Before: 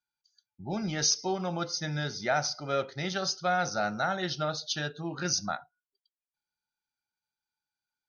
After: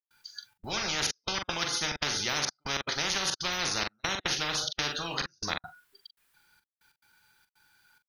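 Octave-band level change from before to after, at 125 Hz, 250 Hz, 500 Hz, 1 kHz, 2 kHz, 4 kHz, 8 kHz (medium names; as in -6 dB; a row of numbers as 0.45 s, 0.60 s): -6.5 dB, -6.0 dB, -6.5 dB, -3.5 dB, +2.0 dB, +4.5 dB, 0.0 dB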